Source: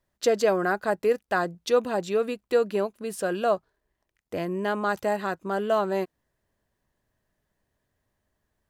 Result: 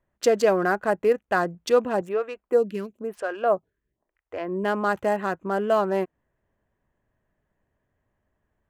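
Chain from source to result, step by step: Wiener smoothing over 9 samples; bell 3800 Hz -5.5 dB 0.22 oct; 2.01–4.64 photocell phaser 1 Hz; gain +2.5 dB

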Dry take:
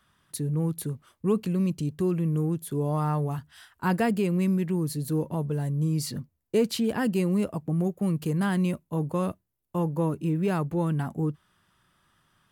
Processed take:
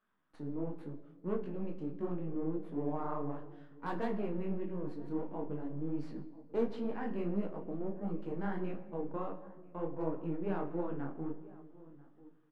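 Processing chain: half-wave gain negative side -12 dB; LPF 1800 Hz 12 dB/oct; resonant low shelf 170 Hz -11 dB, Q 1.5; overloaded stage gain 17.5 dB; doubler 35 ms -10 dB; outdoor echo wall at 170 m, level -20 dB; shoebox room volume 1400 m³, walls mixed, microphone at 0.54 m; detuned doubles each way 51 cents; gain -5.5 dB

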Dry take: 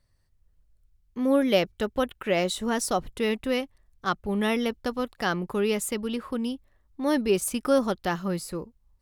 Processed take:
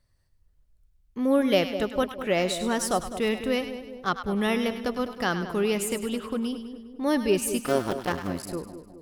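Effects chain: 7.65–8.48 cycle switcher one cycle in 2, muted; split-band echo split 780 Hz, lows 0.205 s, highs 0.101 s, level -10 dB

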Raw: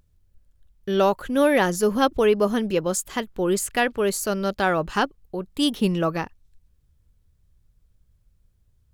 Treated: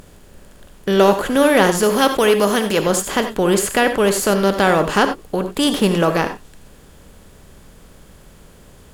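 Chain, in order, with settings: per-bin compression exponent 0.6; 1.83–2.79 tilt +1.5 dB/oct; non-linear reverb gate 0.11 s rising, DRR 8 dB; gain +3 dB

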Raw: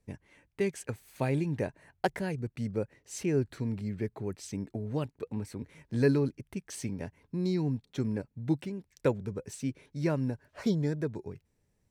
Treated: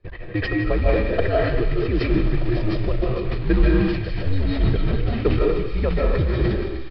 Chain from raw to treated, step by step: comb 1.6 ms, depth 63%; in parallel at -1 dB: compressor 10:1, threshold -42 dBFS, peak gain reduction 22 dB; on the sum: frequency shift -87 Hz; time stretch by phase-locked vocoder 0.58×; short-mantissa float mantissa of 2-bit; downsampling 11025 Hz; air absorption 230 m; on a send: thin delay 0.153 s, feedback 78%, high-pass 2200 Hz, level -6 dB; on the sum: digital reverb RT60 0.81 s, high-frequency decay 0.75×, pre-delay 0.115 s, DRR -3.5 dB; sustainer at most 39 dB/s; gain +6.5 dB

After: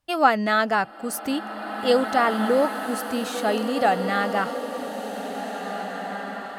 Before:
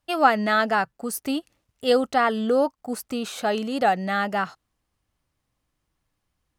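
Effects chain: bloom reverb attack 2.19 s, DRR 6 dB

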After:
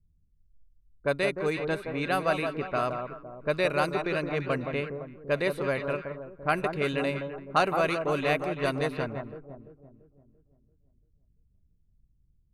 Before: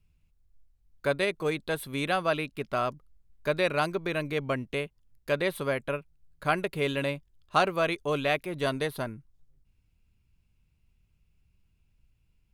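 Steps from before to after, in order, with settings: notch 3300 Hz, Q 6.5; echo with dull and thin repeats by turns 0.17 s, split 1300 Hz, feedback 68%, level -5.5 dB; low-pass opened by the level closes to 320 Hz, open at -22.5 dBFS

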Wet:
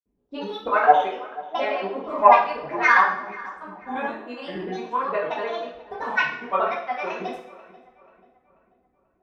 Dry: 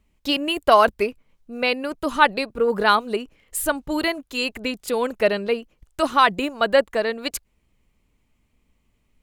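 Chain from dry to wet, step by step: auto-wah 330–1200 Hz, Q 2.1, up, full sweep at -18.5 dBFS; grains, pitch spread up and down by 7 st; tilt -1.5 dB/oct; darkening echo 0.487 s, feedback 44%, low-pass 2600 Hz, level -19 dB; two-slope reverb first 0.55 s, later 1.5 s, DRR -7 dB; gain -2.5 dB

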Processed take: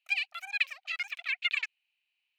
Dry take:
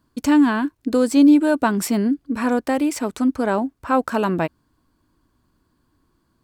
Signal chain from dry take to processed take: ladder high-pass 820 Hz, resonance 75%; tape spacing loss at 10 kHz 34 dB; wide varispeed 2.7×

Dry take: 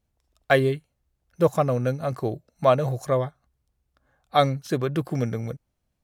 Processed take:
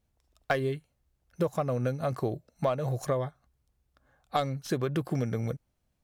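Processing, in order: tracing distortion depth 0.041 ms; compressor 6:1, threshold -25 dBFS, peak gain reduction 12 dB

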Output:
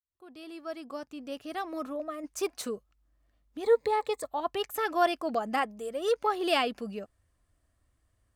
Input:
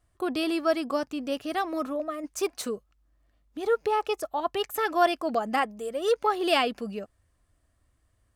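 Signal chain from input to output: opening faded in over 2.41 s; 3.64–4.28 ripple EQ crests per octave 1, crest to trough 14 dB; gain -3 dB

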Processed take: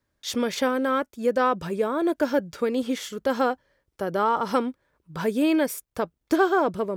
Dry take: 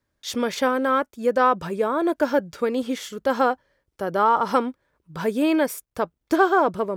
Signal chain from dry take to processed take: dynamic EQ 1000 Hz, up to -5 dB, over -30 dBFS, Q 0.8

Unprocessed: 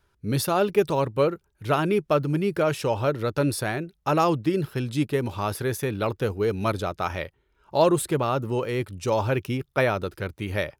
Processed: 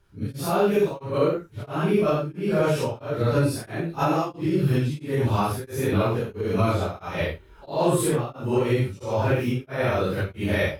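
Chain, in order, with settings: phase scrambler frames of 0.2 s; recorder AGC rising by 38 dB/s; low shelf 320 Hz +4.5 dB; beating tremolo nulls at 1.5 Hz

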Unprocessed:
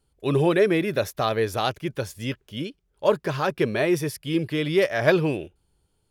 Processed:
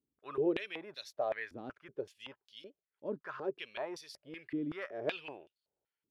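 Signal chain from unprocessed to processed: stepped band-pass 5.3 Hz 270–4300 Hz; gain -4.5 dB

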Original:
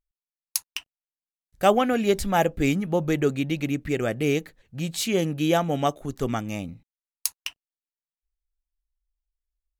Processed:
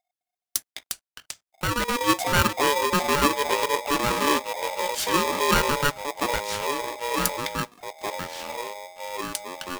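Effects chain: 0.7–2.01 level quantiser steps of 12 dB; echoes that change speed 0.209 s, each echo -4 st, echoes 2, each echo -6 dB; polarity switched at an audio rate 720 Hz

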